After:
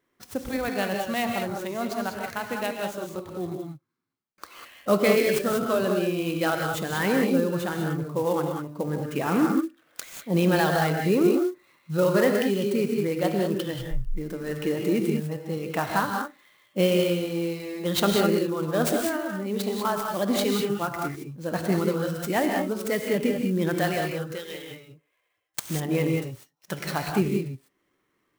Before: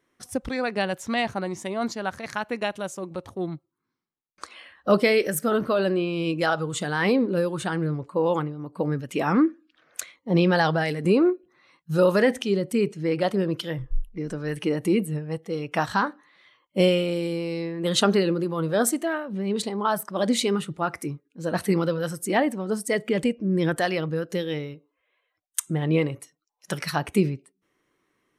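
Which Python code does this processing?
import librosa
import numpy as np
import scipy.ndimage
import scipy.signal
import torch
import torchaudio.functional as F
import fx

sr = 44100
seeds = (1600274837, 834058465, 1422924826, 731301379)

y = fx.highpass(x, sr, hz=fx.line((24.11, 600.0), (24.7, 1400.0)), slope=6, at=(24.11, 24.7), fade=0.02)
y = fx.rev_gated(y, sr, seeds[0], gate_ms=220, shape='rising', drr_db=2.0)
y = fx.clock_jitter(y, sr, seeds[1], jitter_ms=0.025)
y = F.gain(torch.from_numpy(y), -3.0).numpy()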